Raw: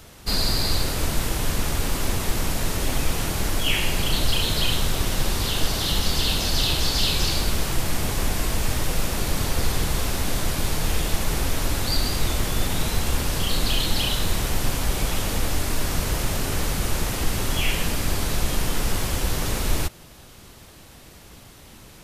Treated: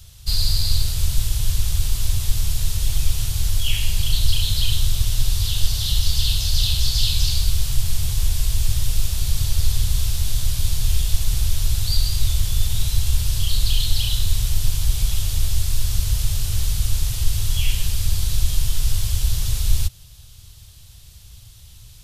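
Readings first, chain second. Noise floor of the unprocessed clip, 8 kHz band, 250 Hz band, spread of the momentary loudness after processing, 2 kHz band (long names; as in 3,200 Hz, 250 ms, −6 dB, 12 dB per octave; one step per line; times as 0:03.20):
−46 dBFS, +1.0 dB, −11.0 dB, 4 LU, −8.5 dB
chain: drawn EQ curve 110 Hz 0 dB, 240 Hz −26 dB, 2,100 Hz −17 dB, 3,400 Hz −5 dB
level +6 dB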